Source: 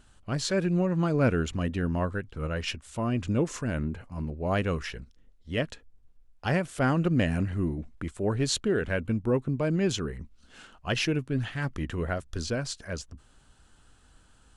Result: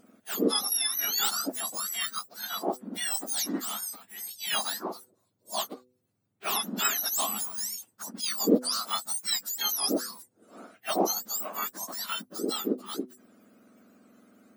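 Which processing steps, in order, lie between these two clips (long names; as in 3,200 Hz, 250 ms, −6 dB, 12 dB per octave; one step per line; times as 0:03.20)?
frequency axis turned over on the octave scale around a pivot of 1,400 Hz
hum removal 125.4 Hz, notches 4
level +2.5 dB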